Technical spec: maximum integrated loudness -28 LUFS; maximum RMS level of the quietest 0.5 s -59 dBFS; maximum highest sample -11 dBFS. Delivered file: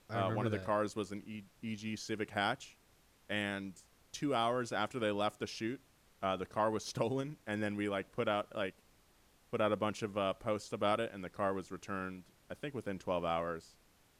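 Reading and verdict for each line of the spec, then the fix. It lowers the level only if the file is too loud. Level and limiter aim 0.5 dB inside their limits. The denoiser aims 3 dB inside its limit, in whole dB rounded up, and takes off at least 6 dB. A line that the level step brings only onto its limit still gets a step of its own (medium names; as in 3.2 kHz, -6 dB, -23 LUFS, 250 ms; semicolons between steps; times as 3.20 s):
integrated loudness -37.5 LUFS: pass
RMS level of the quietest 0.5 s -68 dBFS: pass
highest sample -19.5 dBFS: pass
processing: none needed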